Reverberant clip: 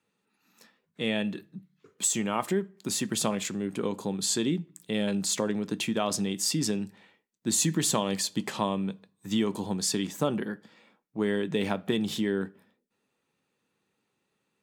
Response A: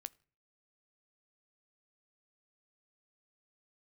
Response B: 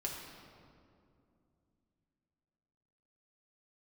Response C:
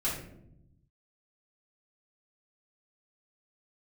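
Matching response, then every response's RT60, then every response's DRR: A; 0.45, 2.5, 0.80 seconds; 16.5, −3.0, −8.0 decibels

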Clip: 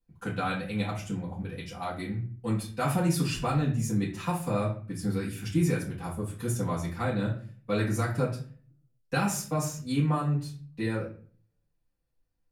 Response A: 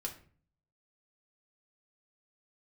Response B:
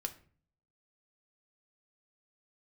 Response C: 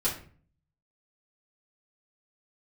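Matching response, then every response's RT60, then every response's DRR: C; 0.45, 0.45, 0.45 seconds; 1.0, 6.5, −8.5 decibels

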